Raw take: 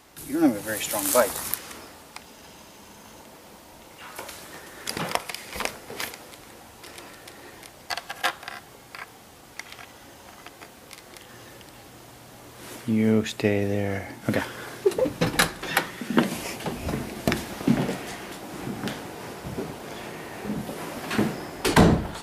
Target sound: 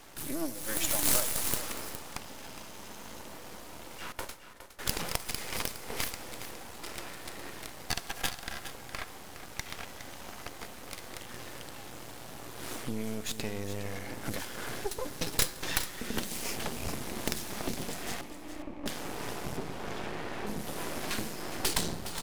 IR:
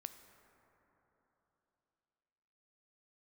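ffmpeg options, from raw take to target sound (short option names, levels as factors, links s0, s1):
-filter_complex "[0:a]asettb=1/sr,asplit=3[s0][s1][s2];[s0]atrim=end=4.124[s3];[s1]atrim=start=4.12:end=4.79,asetpts=PTS-STARTPTS,afade=t=in:d=0.004:c=qsin,afade=t=out:st=0.666:d=0.004:c=qsin,agate=range=0.0708:threshold=0.0141:ratio=16:detection=peak[s4];[s2]atrim=start=4.786[s5];[s3][s4]acrossfade=d=0.004:c1=hsin:c2=qsin[s6];[s6][s5]acrossfade=d=0.004:c1=qsin:c2=hsin,asettb=1/sr,asplit=3[s7][s8][s9];[s7]atrim=end=18.214[s10];[s8]atrim=start=18.21:end=18.86,asetpts=PTS-STARTPTS,afade=t=in:d=0.004:c=qsin,afade=t=out:st=0.646:d=0.004:c=qsin,asplit=3[s11][s12][s13];[s11]bandpass=f=300:t=q:w=8,volume=1[s14];[s12]bandpass=f=870:t=q:w=8,volume=0.501[s15];[s13]bandpass=f=2240:t=q:w=8,volume=0.355[s16];[s14][s15][s16]amix=inputs=3:normalize=0[s17];[s9]atrim=start=18.856[s18];[s10][s17]acrossfade=d=0.004:c1=hsin:c2=qsin[s19];[s19][s18]acrossfade=d=0.004:c1=qsin:c2=hsin,acrossover=split=3800[s20][s21];[s20]acompressor=threshold=0.0178:ratio=6[s22];[s22][s21]amix=inputs=2:normalize=0,aeval=exprs='(mod(5.01*val(0)+1,2)-1)/5.01':c=same,asettb=1/sr,asplit=3[s23][s24][s25];[s23]atrim=end=19.574[s26];[s24]atrim=start=19.57:end=20.47,asetpts=PTS-STARTPTS,afade=t=in:d=0.004:c=qsin,afade=t=out:st=0.896:d=0.004:c=qsin,aemphasis=mode=reproduction:type=50fm[s27];[s25]atrim=start=20.466[s28];[s26][s27]acrossfade=d=0.004:c1=hsin:c2=qsin[s29];[s29][s28]acrossfade=d=0.004:c1=qsin:c2=hsin,aeval=exprs='max(val(0),0)':c=same,aecho=1:1:413:0.266,asplit=2[s30][s31];[1:a]atrim=start_sample=2205[s32];[s31][s32]afir=irnorm=-1:irlink=0,volume=1.26[s33];[s30][s33]amix=inputs=2:normalize=0"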